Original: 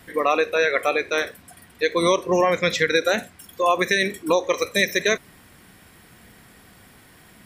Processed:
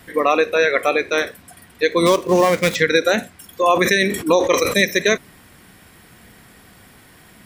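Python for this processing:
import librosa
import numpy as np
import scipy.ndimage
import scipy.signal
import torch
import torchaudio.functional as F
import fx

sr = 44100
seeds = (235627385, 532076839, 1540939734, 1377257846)

y = fx.dead_time(x, sr, dead_ms=0.093, at=(2.05, 2.74), fade=0.02)
y = fx.dynamic_eq(y, sr, hz=230.0, q=1.0, threshold_db=-34.0, ratio=4.0, max_db=4)
y = fx.sustainer(y, sr, db_per_s=73.0, at=(3.63, 4.85))
y = F.gain(torch.from_numpy(y), 3.0).numpy()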